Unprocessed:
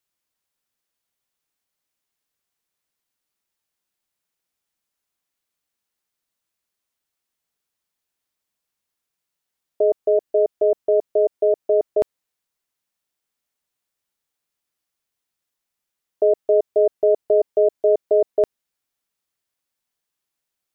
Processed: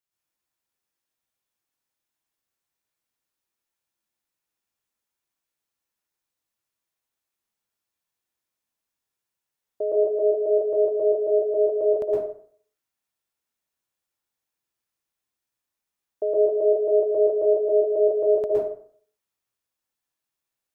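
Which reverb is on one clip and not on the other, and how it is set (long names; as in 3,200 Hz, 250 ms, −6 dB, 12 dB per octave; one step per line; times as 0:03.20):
dense smooth reverb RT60 0.55 s, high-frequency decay 0.6×, pre-delay 105 ms, DRR −5.5 dB
level −9 dB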